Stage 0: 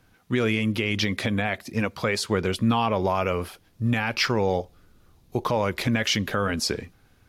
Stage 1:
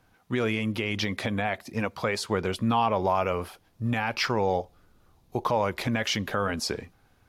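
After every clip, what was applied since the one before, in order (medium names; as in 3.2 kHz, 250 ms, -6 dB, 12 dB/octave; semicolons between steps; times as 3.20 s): peaking EQ 830 Hz +6 dB 1.2 oct; trim -4.5 dB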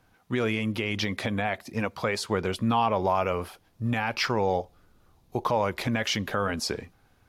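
no audible change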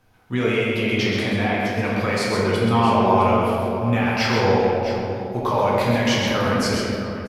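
multi-tap echo 130/660 ms -5.5/-12 dB; reverberation RT60 2.7 s, pre-delay 8 ms, DRR -5 dB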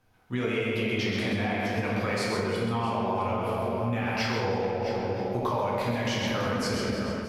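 level rider; on a send: echo whose repeats swap between lows and highs 157 ms, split 980 Hz, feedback 57%, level -10.5 dB; on the sum: compression, threshold -18 dBFS, peak gain reduction 9.5 dB; trim -7 dB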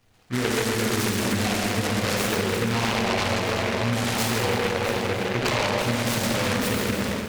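delay time shaken by noise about 1.5 kHz, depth 0.2 ms; trim +4 dB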